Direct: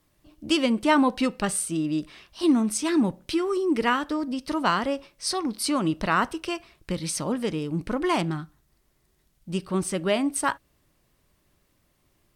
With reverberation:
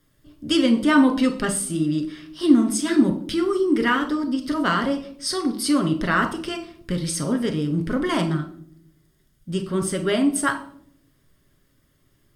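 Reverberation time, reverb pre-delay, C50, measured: not exponential, 7 ms, 11.0 dB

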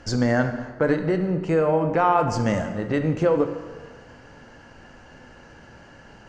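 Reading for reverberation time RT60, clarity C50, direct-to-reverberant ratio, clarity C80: 1.5 s, 8.5 dB, 6.5 dB, 10.5 dB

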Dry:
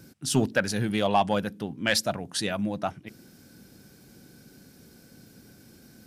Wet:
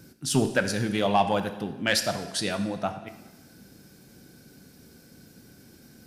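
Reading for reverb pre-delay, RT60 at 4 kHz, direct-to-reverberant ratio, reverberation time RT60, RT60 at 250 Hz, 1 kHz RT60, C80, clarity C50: 6 ms, 1.0 s, 8.0 dB, 1.1 s, 1.1 s, 1.1 s, 12.0 dB, 10.0 dB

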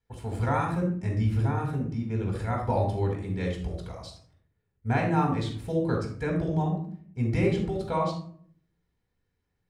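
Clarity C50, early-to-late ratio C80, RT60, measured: 4.5 dB, 9.5 dB, 0.55 s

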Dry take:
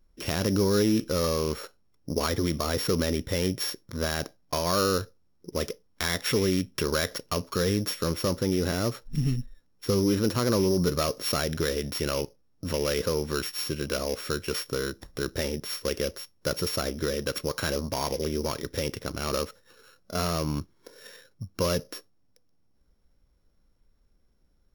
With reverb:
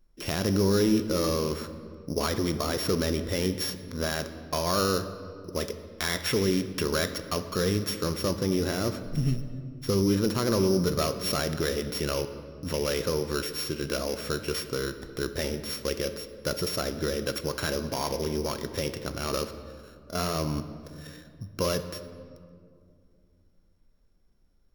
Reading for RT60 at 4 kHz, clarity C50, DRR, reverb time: 1.3 s, 11.0 dB, 9.5 dB, 2.3 s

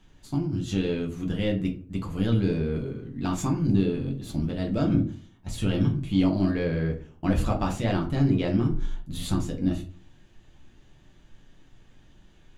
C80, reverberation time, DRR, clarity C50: 16.0 dB, 0.45 s, 0.0 dB, 11.5 dB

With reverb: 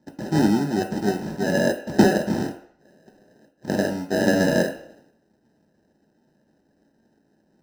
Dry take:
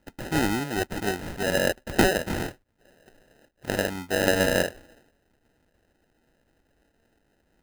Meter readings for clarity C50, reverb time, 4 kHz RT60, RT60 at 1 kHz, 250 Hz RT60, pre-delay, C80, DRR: 10.5 dB, 0.65 s, 0.60 s, 0.65 s, 0.45 s, 3 ms, 13.0 dB, 2.0 dB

